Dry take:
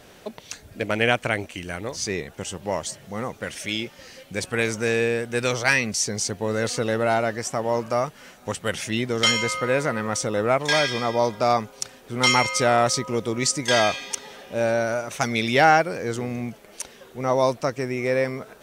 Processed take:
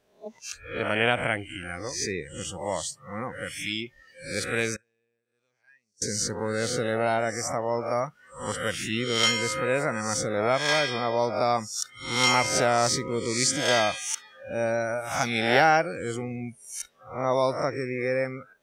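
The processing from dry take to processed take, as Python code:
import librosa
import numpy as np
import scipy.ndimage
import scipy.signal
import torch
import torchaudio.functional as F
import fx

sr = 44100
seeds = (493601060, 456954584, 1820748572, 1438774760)

y = fx.spec_swells(x, sr, rise_s=0.7)
y = fx.gate_flip(y, sr, shuts_db=-19.0, range_db=-30, at=(4.75, 6.02))
y = fx.noise_reduce_blind(y, sr, reduce_db=20)
y = y * 10.0 ** (-4.5 / 20.0)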